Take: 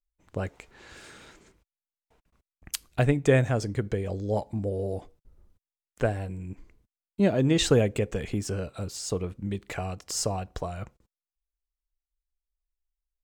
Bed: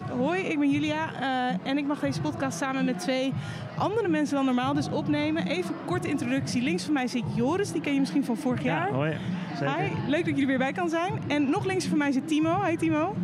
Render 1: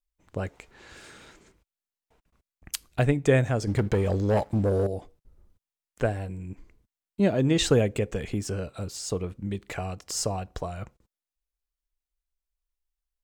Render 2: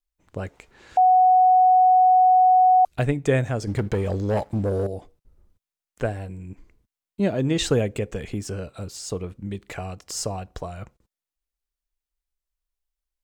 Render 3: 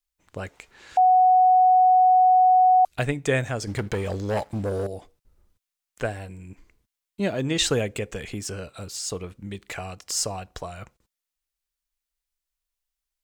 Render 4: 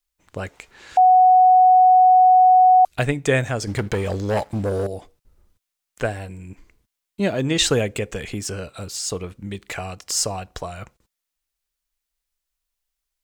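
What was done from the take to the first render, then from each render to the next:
3.67–4.87 sample leveller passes 2
0.97–2.85 bleep 740 Hz -12 dBFS
tilt shelf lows -4.5 dB, about 910 Hz
gain +4 dB

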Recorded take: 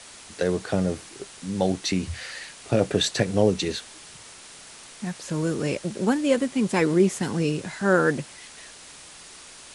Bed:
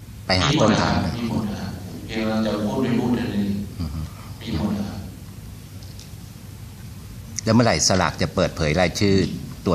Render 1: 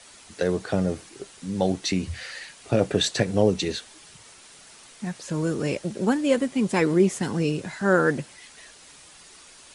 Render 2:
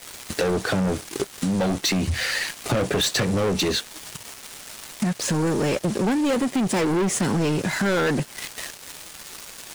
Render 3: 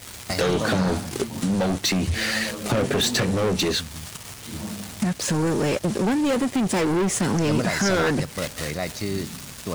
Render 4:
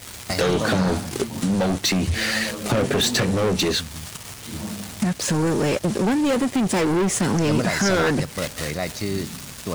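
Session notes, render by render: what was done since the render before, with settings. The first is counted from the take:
denoiser 6 dB, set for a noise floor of -46 dBFS
sample leveller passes 5; compressor 5:1, threshold -22 dBFS, peak gain reduction 11.5 dB
add bed -10 dB
gain +1.5 dB

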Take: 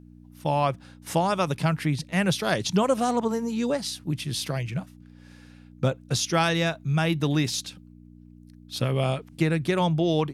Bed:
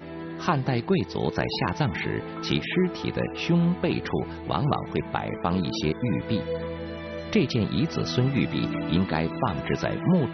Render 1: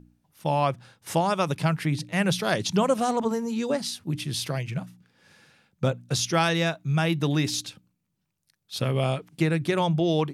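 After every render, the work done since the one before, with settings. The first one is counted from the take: de-hum 60 Hz, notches 5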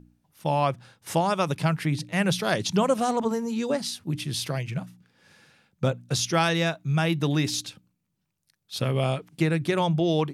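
nothing audible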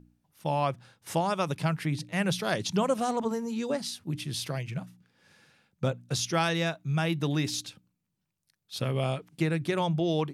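gain -4 dB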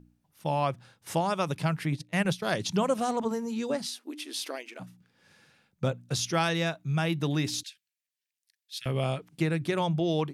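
1.92–2.43 transient shaper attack +3 dB, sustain -12 dB; 3.86–4.8 brick-wall FIR high-pass 240 Hz; 7.63–8.86 elliptic high-pass 1700 Hz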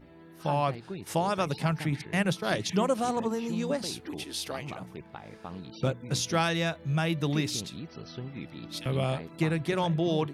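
add bed -16 dB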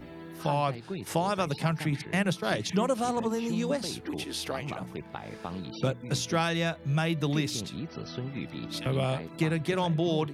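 three-band squash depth 40%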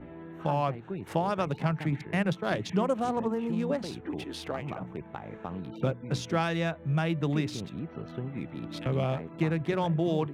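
Wiener smoothing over 9 samples; high shelf 4000 Hz -9.5 dB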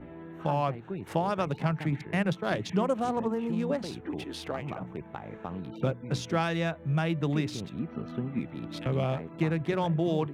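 7.79–8.41 small resonant body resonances 230/1200/2400 Hz, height 11 dB, ringing for 95 ms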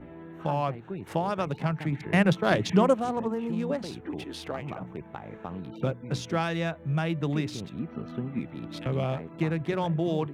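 2.03–2.95 gain +6 dB

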